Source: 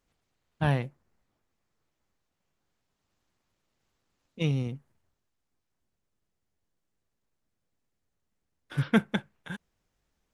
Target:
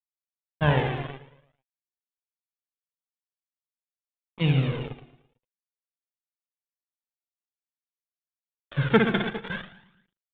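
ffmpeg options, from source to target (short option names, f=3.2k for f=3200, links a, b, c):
-filter_complex "[0:a]asplit=2[a][b];[b]aecho=0:1:60|129|208.4|299.6|404.5:0.631|0.398|0.251|0.158|0.1[c];[a][c]amix=inputs=2:normalize=0,acrusher=bits=5:mix=0:aa=0.5,aresample=8000,aresample=44100,asplit=2[d][e];[e]aecho=0:1:112|224|336|448:0.178|0.08|0.036|0.0162[f];[d][f]amix=inputs=2:normalize=0,aphaser=in_gain=1:out_gain=1:delay=2.9:decay=0.49:speed=0.49:type=triangular,volume=3.5dB"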